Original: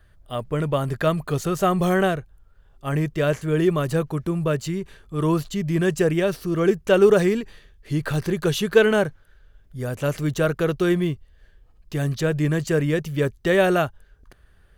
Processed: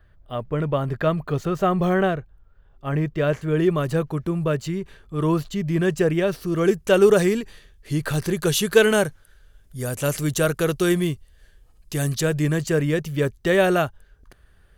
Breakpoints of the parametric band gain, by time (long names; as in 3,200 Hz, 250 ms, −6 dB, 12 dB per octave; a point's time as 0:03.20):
parametric band 10,000 Hz 1.8 octaves
0:02.99 −13.5 dB
0:03.83 −4 dB
0:06.28 −4 dB
0:06.70 +6.5 dB
0:08.19 +6.5 dB
0:08.81 +13 dB
0:12.10 +13 dB
0:12.71 +2 dB